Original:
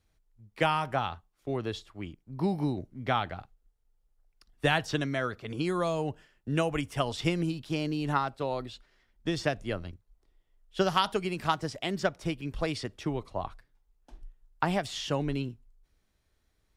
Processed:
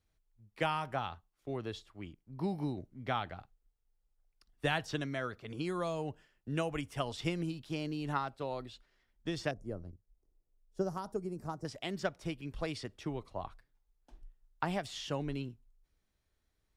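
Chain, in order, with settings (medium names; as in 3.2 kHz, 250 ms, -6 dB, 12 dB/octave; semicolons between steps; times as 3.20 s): 9.51–11.65 s: FFT filter 450 Hz 0 dB, 1.3 kHz -11 dB, 3.2 kHz -28 dB, 5.7 kHz -6 dB; trim -6.5 dB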